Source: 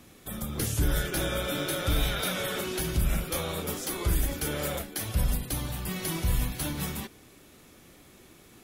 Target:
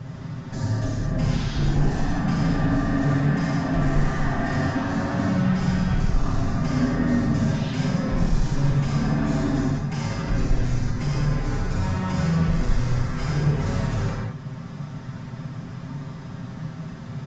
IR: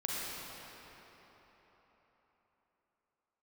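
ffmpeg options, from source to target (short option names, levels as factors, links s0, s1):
-filter_complex "[0:a]asplit=2[s0][s1];[s1]highpass=f=720:p=1,volume=11.2,asoftclip=type=tanh:threshold=0.158[s2];[s0][s2]amix=inputs=2:normalize=0,lowpass=f=1100:p=1,volume=0.501,asplit=2[s3][s4];[s4]acompressor=threshold=0.00891:ratio=6,volume=1[s5];[s3][s5]amix=inputs=2:normalize=0,lowshelf=f=500:t=q:w=1.5:g=9.5,aecho=1:1:3.8:0.62,asetrate=22050,aresample=44100,aresample=16000,asoftclip=type=hard:threshold=0.2,aresample=44100[s6];[1:a]atrim=start_sample=2205,afade=t=out:st=0.26:d=0.01,atrim=end_sample=11907[s7];[s6][s7]afir=irnorm=-1:irlink=0,volume=0.668"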